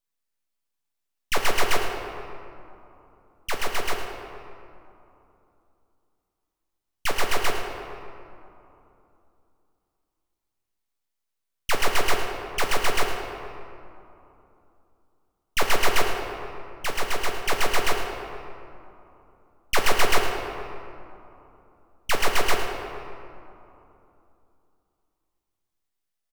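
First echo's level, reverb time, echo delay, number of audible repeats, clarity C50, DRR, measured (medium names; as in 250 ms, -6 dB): -12.0 dB, 2.9 s, 108 ms, 1, 4.0 dB, 1.5 dB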